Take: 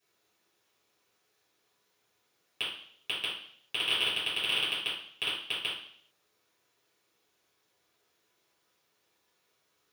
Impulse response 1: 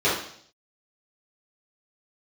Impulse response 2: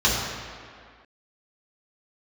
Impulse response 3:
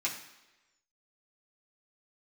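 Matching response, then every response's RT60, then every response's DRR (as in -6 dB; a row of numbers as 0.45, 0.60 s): 1; 0.60, 2.1, 1.1 s; -11.5, -6.5, -5.5 dB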